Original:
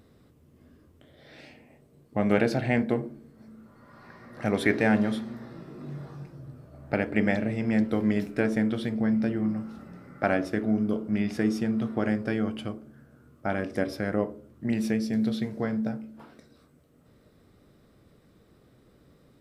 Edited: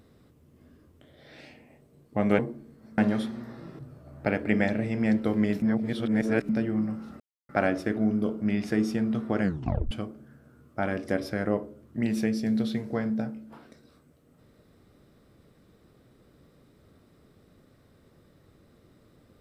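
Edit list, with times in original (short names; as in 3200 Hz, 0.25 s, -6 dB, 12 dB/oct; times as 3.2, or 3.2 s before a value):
2.39–2.95 cut
3.54–4.91 cut
5.72–6.46 cut
8.29–9.16 reverse
9.87–10.16 mute
12.09 tape stop 0.49 s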